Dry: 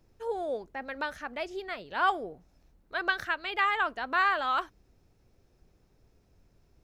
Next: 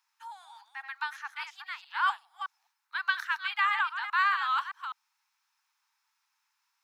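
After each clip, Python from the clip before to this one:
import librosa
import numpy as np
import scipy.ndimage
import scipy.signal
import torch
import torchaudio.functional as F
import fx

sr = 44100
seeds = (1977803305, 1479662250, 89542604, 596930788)

y = fx.reverse_delay(x, sr, ms=205, wet_db=-8.5)
y = scipy.signal.sosfilt(scipy.signal.butter(16, 860.0, 'highpass', fs=sr, output='sos'), y)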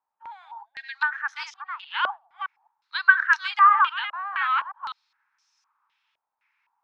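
y = fx.spec_box(x, sr, start_s=0.66, length_s=0.29, low_hz=690.0, high_hz=1500.0, gain_db=-23)
y = fx.filter_held_lowpass(y, sr, hz=3.9, low_hz=630.0, high_hz=5800.0)
y = y * 10.0 ** (2.0 / 20.0)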